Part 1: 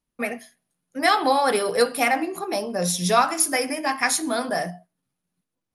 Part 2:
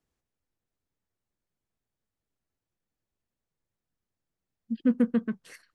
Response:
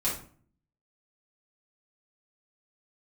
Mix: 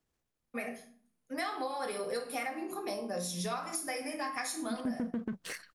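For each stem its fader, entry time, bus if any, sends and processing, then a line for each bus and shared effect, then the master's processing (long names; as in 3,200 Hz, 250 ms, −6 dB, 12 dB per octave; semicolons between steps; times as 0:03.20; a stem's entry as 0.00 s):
−13.5 dB, 0.35 s, send −6 dB, no processing
+2.0 dB, 0.00 s, no send, leveller curve on the samples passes 1; transient designer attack −5 dB, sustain +8 dB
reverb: on, RT60 0.45 s, pre-delay 4 ms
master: downward compressor 6 to 1, threshold −33 dBFS, peak gain reduction 14.5 dB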